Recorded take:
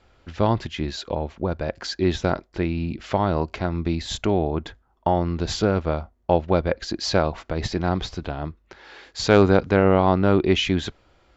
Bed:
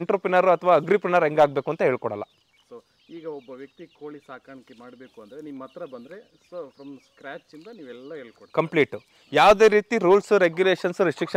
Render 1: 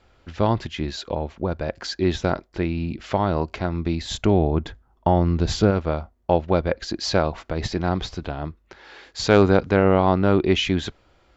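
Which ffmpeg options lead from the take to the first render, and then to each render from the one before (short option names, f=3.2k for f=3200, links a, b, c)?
-filter_complex "[0:a]asettb=1/sr,asplit=3[a][b][c];[a]atrim=end=4.234[d];[b]atrim=start=4.23:end=5.71,asetpts=PTS-STARTPTS,afade=t=in:d=0.004:c=qsin,afade=t=out:st=1.476:d=0.004:c=qsin,lowshelf=f=280:g=6.5[e];[c]atrim=start=5.706[f];[d][e]acrossfade=d=0.004:c1=hsin:c2=qsin[g];[g][f]acrossfade=d=0.004:c1=qsin:c2=hsin"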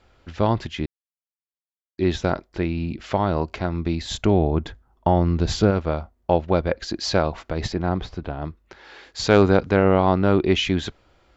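-filter_complex "[0:a]asettb=1/sr,asplit=3[a][b][c];[a]atrim=end=7.724[d];[b]atrim=start=7.72:end=8.42,asetpts=PTS-STARTPTS,afade=t=in:d=0.004:c=qsin,afade=t=out:st=0.696:d=0.004:c=qsin,lowpass=f=1.8k:p=1[e];[c]atrim=start=8.416[f];[d][e]acrossfade=d=0.004:c1=hsin:c2=qsin[g];[g][f]acrossfade=d=0.004:c1=qsin:c2=hsin,asplit=3[h][i][j];[h]atrim=end=0.86,asetpts=PTS-STARTPTS,afade=t=out:st=0.856:d=0.004:c=hsin[k];[i]atrim=start=0.86:end=1.98,asetpts=PTS-STARTPTS,volume=0[l];[j]atrim=start=1.98,asetpts=PTS-STARTPTS,afade=t=in:d=0.004:c=hsin[m];[k][l][m]concat=n=3:v=0:a=1"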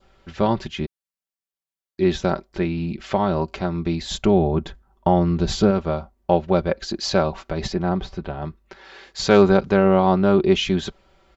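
-af "aecho=1:1:5.2:0.57,adynamicequalizer=threshold=0.00708:dfrequency=2000:dqfactor=2:tfrequency=2000:tqfactor=2:attack=5:release=100:ratio=0.375:range=2.5:mode=cutabove:tftype=bell"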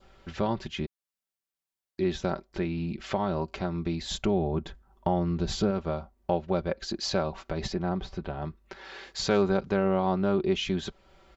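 -af "acompressor=threshold=-39dB:ratio=1.5"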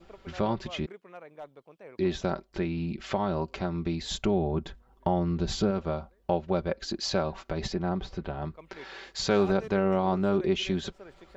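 -filter_complex "[1:a]volume=-27dB[a];[0:a][a]amix=inputs=2:normalize=0"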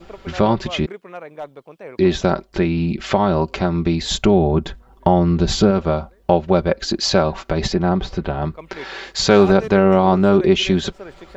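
-af "volume=12dB"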